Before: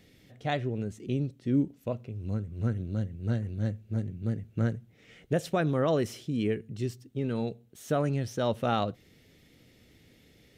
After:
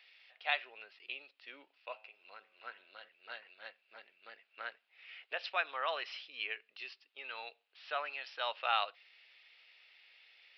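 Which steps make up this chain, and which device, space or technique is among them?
musical greeting card (resampled via 11.025 kHz; high-pass 860 Hz 24 dB/octave; peaking EQ 2.6 kHz +10 dB 0.35 oct); 1.81–3.09 s: de-hum 108.2 Hz, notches 31

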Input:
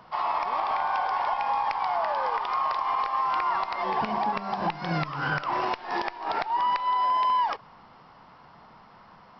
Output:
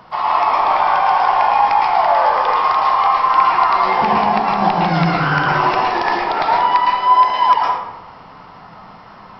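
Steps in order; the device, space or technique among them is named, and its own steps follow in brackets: bathroom (reverberation RT60 0.95 s, pre-delay 105 ms, DRR -3 dB); trim +8 dB

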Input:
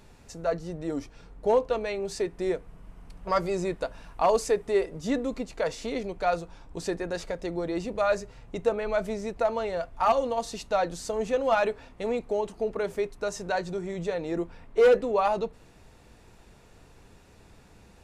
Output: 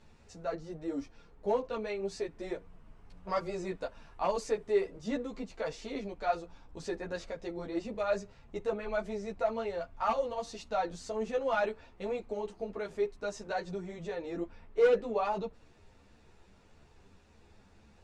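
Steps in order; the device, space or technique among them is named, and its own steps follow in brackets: string-machine ensemble chorus (three-phase chorus; low-pass 6.9 kHz 12 dB/octave); trim -3.5 dB

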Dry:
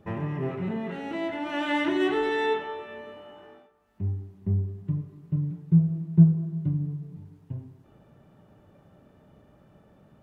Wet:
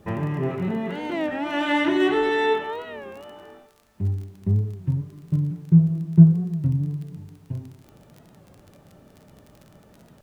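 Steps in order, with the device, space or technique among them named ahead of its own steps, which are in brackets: warped LP (warped record 33 1/3 rpm, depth 160 cents; crackle 24 per s -40 dBFS; pink noise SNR 42 dB); trim +4.5 dB

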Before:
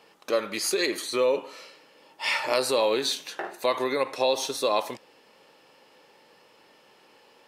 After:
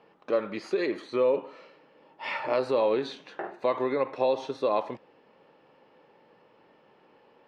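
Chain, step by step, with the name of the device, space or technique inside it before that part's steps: phone in a pocket (low-pass 3.4 kHz 12 dB/octave; peaking EQ 150 Hz +3 dB 1.2 oct; treble shelf 2 kHz -12 dB)

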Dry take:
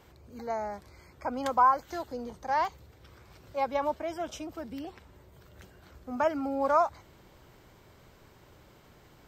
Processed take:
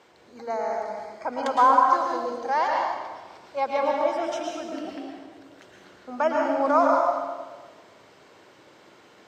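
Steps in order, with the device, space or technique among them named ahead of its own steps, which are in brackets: supermarket ceiling speaker (band-pass 310–7000 Hz; reverberation RT60 1.4 s, pre-delay 104 ms, DRR -1.5 dB); trim +3.5 dB

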